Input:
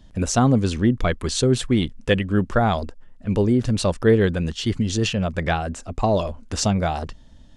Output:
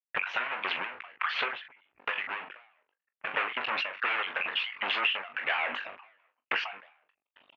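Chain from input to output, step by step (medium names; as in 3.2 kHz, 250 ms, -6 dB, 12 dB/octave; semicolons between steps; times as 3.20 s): random holes in the spectrogram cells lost 25%; recorder AGC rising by 5.3 dB/s; fuzz box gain 36 dB, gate -43 dBFS; harmonic-percussive split harmonic -15 dB; high-pass 1.5 kHz 12 dB/octave; gate -46 dBFS, range -51 dB; elliptic low-pass 2.7 kHz, stop band 70 dB; early reflections 21 ms -9 dB, 41 ms -11.5 dB; compression 6:1, threshold -31 dBFS, peak gain reduction 11.5 dB; endings held to a fixed fall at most 100 dB/s; trim +6.5 dB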